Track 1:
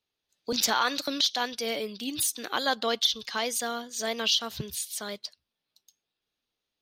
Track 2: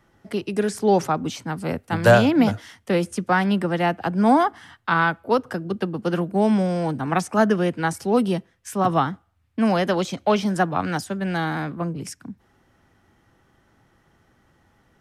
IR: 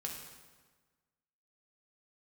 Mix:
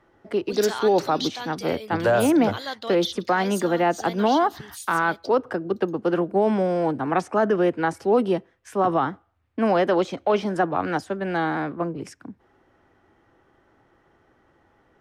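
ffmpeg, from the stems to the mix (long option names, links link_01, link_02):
-filter_complex "[0:a]volume=-5.5dB[link_01];[1:a]lowpass=frequency=1700:poles=1,lowshelf=frequency=260:width_type=q:width=1.5:gain=-6.5,volume=2.5dB[link_02];[link_01][link_02]amix=inputs=2:normalize=0,alimiter=limit=-11.5dB:level=0:latency=1:release=15"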